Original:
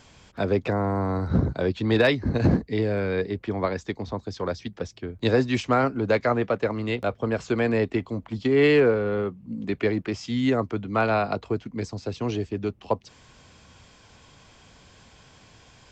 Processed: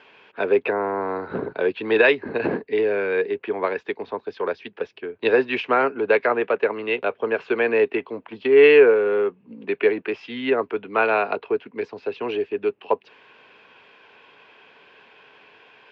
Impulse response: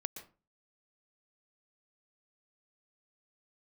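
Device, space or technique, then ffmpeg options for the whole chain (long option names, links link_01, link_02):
phone earpiece: -af "highpass=350,equalizer=frequency=420:width_type=q:width=4:gain=10,equalizer=frequency=940:width_type=q:width=4:gain=5,equalizer=frequency=1600:width_type=q:width=4:gain=7,equalizer=frequency=2600:width_type=q:width=4:gain=10,lowpass=frequency=3500:width=0.5412,lowpass=frequency=3500:width=1.3066"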